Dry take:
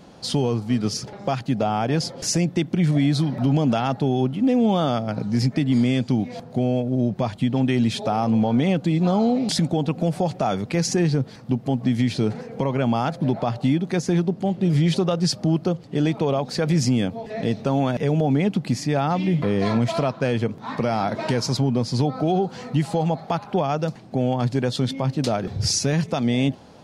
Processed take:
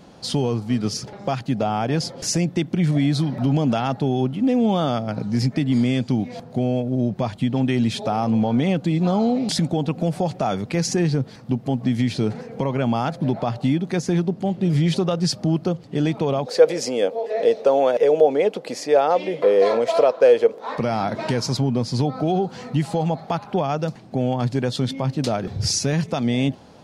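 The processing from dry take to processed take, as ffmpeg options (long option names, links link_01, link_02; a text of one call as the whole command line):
ffmpeg -i in.wav -filter_complex "[0:a]asettb=1/sr,asplit=3[link_01][link_02][link_03];[link_01]atrim=end=16.464[link_04];[link_02]atrim=start=16.46:end=20.78,asetpts=PTS-STARTPTS,afade=type=in:duration=0.004:curve=qsin,afade=type=out:start_time=4.316:duration=0.004:curve=qsin,highpass=frequency=490:width_type=q:width=5[link_05];[link_03]atrim=start=20.776[link_06];[link_04][link_05]acrossfade=duration=0.004:curve1=hsin:curve2=qsin[link_07];[link_07][link_06]acrossfade=duration=0.004:curve1=qsin:curve2=hsin" out.wav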